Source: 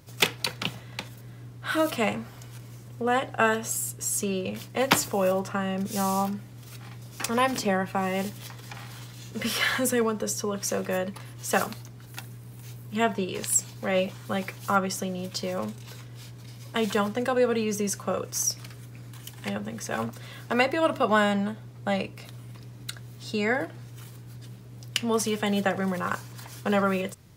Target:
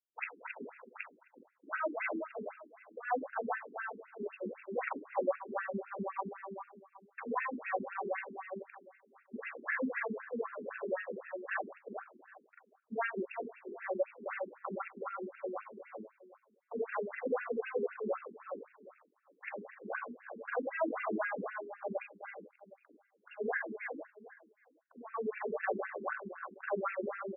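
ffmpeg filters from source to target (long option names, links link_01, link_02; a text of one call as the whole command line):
ffmpeg -i in.wav -filter_complex "[0:a]afftfilt=real='re':imag='-im':win_size=4096:overlap=0.75,agate=range=-54dB:threshold=-45dB:ratio=16:detection=peak,equalizer=frequency=68:width=0.54:gain=-2.5,acrossover=split=200|5400[link_01][link_02][link_03];[link_02]alimiter=limit=-20dB:level=0:latency=1:release=222[link_04];[link_01][link_04][link_03]amix=inputs=3:normalize=0,asoftclip=type=hard:threshold=-23dB,aeval=exprs='val(0)+0.00708*sin(2*PI*3500*n/s)':channel_layout=same,asplit=2[link_05][link_06];[link_06]adelay=382,lowpass=frequency=2800:poles=1,volume=-6dB,asplit=2[link_07][link_08];[link_08]adelay=382,lowpass=frequency=2800:poles=1,volume=0.23,asplit=2[link_09][link_10];[link_10]adelay=382,lowpass=frequency=2800:poles=1,volume=0.23[link_11];[link_07][link_09][link_11]amix=inputs=3:normalize=0[link_12];[link_05][link_12]amix=inputs=2:normalize=0,afftfilt=real='re*between(b*sr/1024,290*pow(2000/290,0.5+0.5*sin(2*PI*3.9*pts/sr))/1.41,290*pow(2000/290,0.5+0.5*sin(2*PI*3.9*pts/sr))*1.41)':imag='im*between(b*sr/1024,290*pow(2000/290,0.5+0.5*sin(2*PI*3.9*pts/sr))/1.41,290*pow(2000/290,0.5+0.5*sin(2*PI*3.9*pts/sr))*1.41)':win_size=1024:overlap=0.75,volume=1.5dB" out.wav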